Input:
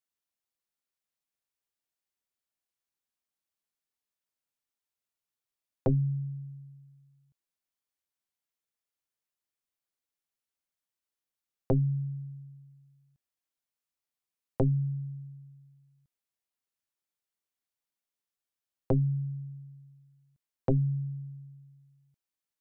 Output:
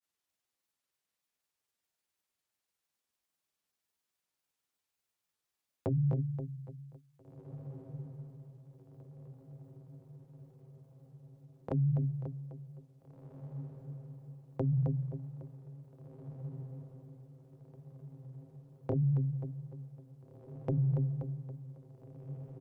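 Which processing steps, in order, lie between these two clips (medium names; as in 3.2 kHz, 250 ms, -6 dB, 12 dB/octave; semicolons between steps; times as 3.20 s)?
high-pass 41 Hz 12 dB/octave; on a send: feedback delay 269 ms, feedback 39%, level -14 dB; on the sum: granulator, spray 18 ms, pitch spread up and down by 0 st; peak limiter -30 dBFS, peak gain reduction 14 dB; echo that smears into a reverb 1808 ms, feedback 57%, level -12 dB; trim +5.5 dB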